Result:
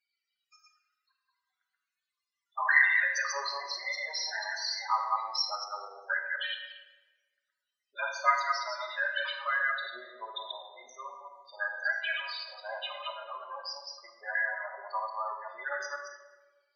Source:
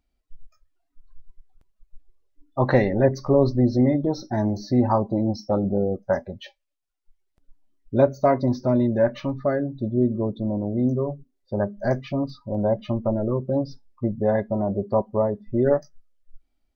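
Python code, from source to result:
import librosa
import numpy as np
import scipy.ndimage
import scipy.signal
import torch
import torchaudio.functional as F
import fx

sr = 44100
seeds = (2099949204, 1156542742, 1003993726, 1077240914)

y = fx.reverse_delay(x, sr, ms=120, wet_db=-1)
y = scipy.signal.sosfilt(scipy.signal.butter(4, 1300.0, 'highpass', fs=sr, output='sos'), y)
y = fx.high_shelf(y, sr, hz=2100.0, db=5.0)
y = fx.transient(y, sr, attack_db=5, sustain_db=9, at=(9.55, 10.62))
y = fx.spec_topn(y, sr, count=16)
y = fx.room_shoebox(y, sr, seeds[0], volume_m3=1000.0, walls='mixed', distance_m=1.3)
y = y * librosa.db_to_amplitude(4.5)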